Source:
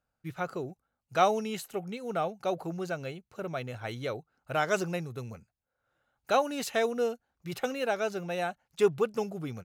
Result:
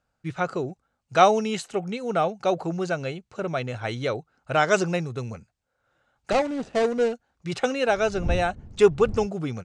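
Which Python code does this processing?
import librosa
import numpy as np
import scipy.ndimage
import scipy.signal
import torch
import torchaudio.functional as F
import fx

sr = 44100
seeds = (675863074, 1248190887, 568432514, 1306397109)

y = fx.median_filter(x, sr, points=41, at=(6.31, 7.13))
y = fx.dmg_wind(y, sr, seeds[0], corner_hz=110.0, level_db=-40.0, at=(7.86, 9.26), fade=0.02)
y = scipy.signal.sosfilt(scipy.signal.butter(6, 8700.0, 'lowpass', fs=sr, output='sos'), y)
y = F.gain(torch.from_numpy(y), 7.5).numpy()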